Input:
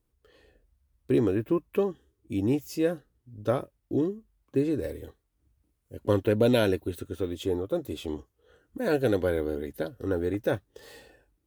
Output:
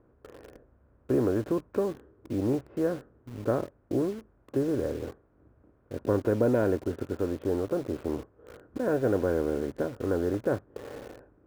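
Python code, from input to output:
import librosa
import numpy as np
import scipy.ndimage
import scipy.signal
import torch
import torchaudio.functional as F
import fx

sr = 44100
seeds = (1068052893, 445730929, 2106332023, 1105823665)

p1 = fx.bin_compress(x, sr, power=0.6)
p2 = scipy.signal.sosfilt(scipy.signal.butter(4, 1600.0, 'lowpass', fs=sr, output='sos'), p1)
p3 = fx.quant_dither(p2, sr, seeds[0], bits=6, dither='none')
p4 = p2 + (p3 * librosa.db_to_amplitude(-5.0))
y = p4 * librosa.db_to_amplitude(-8.0)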